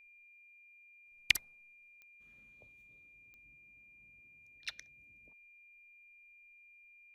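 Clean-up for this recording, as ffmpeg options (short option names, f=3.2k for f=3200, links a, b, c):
-af "adeclick=t=4,bandreject=f=2.4k:w=30"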